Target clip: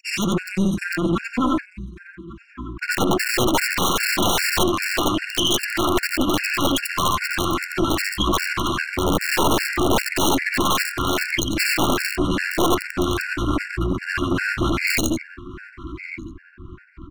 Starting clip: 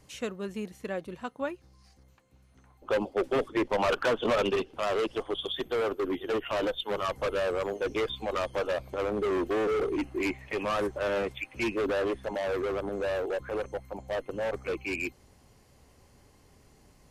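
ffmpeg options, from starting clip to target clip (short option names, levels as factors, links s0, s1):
-filter_complex "[0:a]afftfilt=real='re':imag='-im':win_size=8192:overlap=0.75,bandreject=f=85.16:t=h:w=4,bandreject=f=170.32:t=h:w=4,bandreject=f=255.48:t=h:w=4,bandreject=f=340.64:t=h:w=4,bandreject=f=425.8:t=h:w=4,bandreject=f=510.96:t=h:w=4,bandreject=f=596.12:t=h:w=4,bandreject=f=681.28:t=h:w=4,bandreject=f=766.44:t=h:w=4,bandreject=f=851.6:t=h:w=4,bandreject=f=936.76:t=h:w=4,bandreject=f=1021.92:t=h:w=4,bandreject=f=1107.08:t=h:w=4,bandreject=f=1192.24:t=h:w=4,bandreject=f=1277.4:t=h:w=4,bandreject=f=1362.56:t=h:w=4,bandreject=f=1447.72:t=h:w=4,bandreject=f=1532.88:t=h:w=4,bandreject=f=1618.04:t=h:w=4,bandreject=f=1703.2:t=h:w=4,bandreject=f=1788.36:t=h:w=4,bandreject=f=1873.52:t=h:w=4,bandreject=f=1958.68:t=h:w=4,bandreject=f=2043.84:t=h:w=4,bandreject=f=2129:t=h:w=4,bandreject=f=2214.16:t=h:w=4,bandreject=f=2299.32:t=h:w=4,bandreject=f=2384.48:t=h:w=4,bandreject=f=2469.64:t=h:w=4,adynamicequalizer=threshold=0.00112:dfrequency=1400:dqfactor=7.3:tfrequency=1400:tqfactor=7.3:attack=5:release=100:ratio=0.375:range=2:mode=cutabove:tftype=bell,asetrate=40440,aresample=44100,atempo=1.09051,anlmdn=0.000251,asplit=2[s0][s1];[s1]adelay=1147,lowpass=f=2500:p=1,volume=0.112,asplit=2[s2][s3];[s3]adelay=1147,lowpass=f=2500:p=1,volume=0.45,asplit=2[s4][s5];[s5]adelay=1147,lowpass=f=2500:p=1,volume=0.45,asplit=2[s6][s7];[s7]adelay=1147,lowpass=f=2500:p=1,volume=0.45[s8];[s0][s2][s4][s6][s8]amix=inputs=5:normalize=0,afftfilt=real='re*(1-between(b*sr/4096,370,990))':imag='im*(1-between(b*sr/4096,370,990))':win_size=4096:overlap=0.75,aeval=exprs='(mod(39.8*val(0)+1,2)-1)/39.8':c=same,equalizer=f=84:t=o:w=0.21:g=4.5,aeval=exprs='clip(val(0),-1,0.00422)':c=same,alimiter=level_in=59.6:limit=0.891:release=50:level=0:latency=1,afftfilt=real='re*gt(sin(2*PI*2.5*pts/sr)*(1-2*mod(floor(b*sr/1024/1400),2)),0)':imag='im*gt(sin(2*PI*2.5*pts/sr)*(1-2*mod(floor(b*sr/1024/1400),2)),0)':win_size=1024:overlap=0.75,volume=0.422"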